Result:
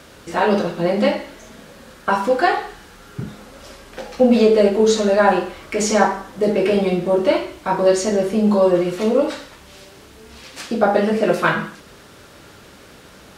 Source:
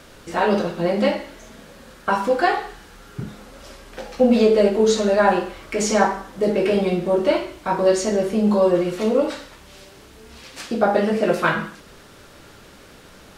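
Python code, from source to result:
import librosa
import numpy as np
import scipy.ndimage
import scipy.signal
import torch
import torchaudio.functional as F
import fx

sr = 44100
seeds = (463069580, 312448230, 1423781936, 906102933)

y = scipy.signal.sosfilt(scipy.signal.butter(2, 46.0, 'highpass', fs=sr, output='sos'), x)
y = y * 10.0 ** (2.0 / 20.0)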